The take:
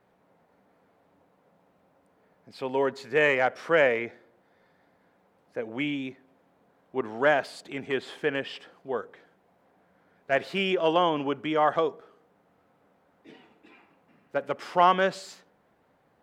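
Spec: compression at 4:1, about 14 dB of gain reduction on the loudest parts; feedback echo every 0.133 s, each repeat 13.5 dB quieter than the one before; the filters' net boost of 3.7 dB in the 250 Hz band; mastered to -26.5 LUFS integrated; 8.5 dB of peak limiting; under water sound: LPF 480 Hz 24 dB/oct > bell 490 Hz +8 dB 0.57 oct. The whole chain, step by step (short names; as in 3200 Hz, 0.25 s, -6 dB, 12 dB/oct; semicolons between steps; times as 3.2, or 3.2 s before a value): bell 250 Hz +3.5 dB; compressor 4:1, threshold -33 dBFS; limiter -29 dBFS; LPF 480 Hz 24 dB/oct; bell 490 Hz +8 dB 0.57 oct; feedback echo 0.133 s, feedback 21%, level -13.5 dB; gain +14 dB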